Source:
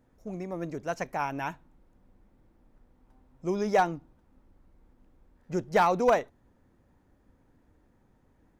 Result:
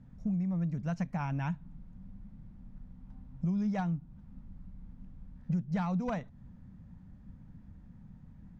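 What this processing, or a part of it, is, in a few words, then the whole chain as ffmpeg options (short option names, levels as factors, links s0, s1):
jukebox: -af "lowpass=5800,lowshelf=f=260:t=q:w=3:g=12,acompressor=threshold=0.0282:ratio=5"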